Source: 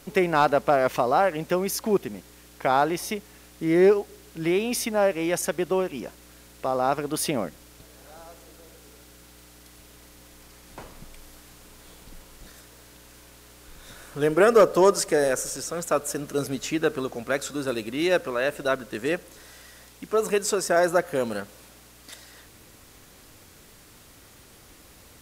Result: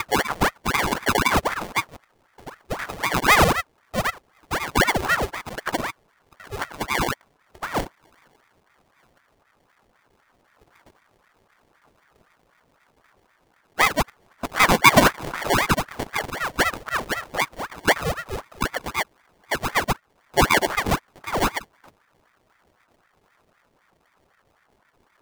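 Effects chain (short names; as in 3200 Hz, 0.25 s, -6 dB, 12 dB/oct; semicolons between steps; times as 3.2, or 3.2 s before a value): slices in reverse order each 82 ms, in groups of 8; low shelf 280 Hz +5 dB; spectral noise reduction 17 dB; speaker cabinet 160–8900 Hz, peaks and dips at 240 Hz +8 dB, 540 Hz +6 dB, 1500 Hz -7 dB, 4200 Hz +4 dB, 6300 Hz +4 dB; in parallel at -1.5 dB: compressor, threshold -28 dBFS, peak gain reduction 19 dB; on the sum: sample-and-hold 35×; ring modulator with a swept carrier 910 Hz, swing 85%, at 3.9 Hz; gain +1 dB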